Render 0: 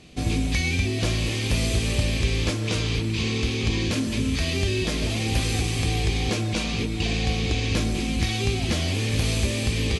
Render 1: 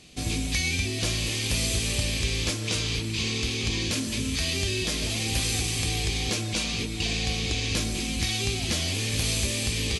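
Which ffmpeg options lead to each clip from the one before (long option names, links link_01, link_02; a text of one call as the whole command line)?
ffmpeg -i in.wav -af "highshelf=frequency=3000:gain=11.5,volume=-5.5dB" out.wav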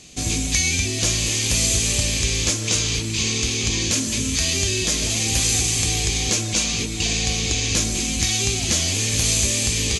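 ffmpeg -i in.wav -af "equalizer=frequency=6700:width_type=o:width=0.46:gain=11,volume=4dB" out.wav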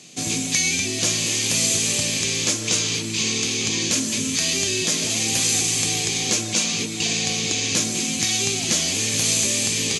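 ffmpeg -i in.wav -af "highpass=frequency=130:width=0.5412,highpass=frequency=130:width=1.3066" out.wav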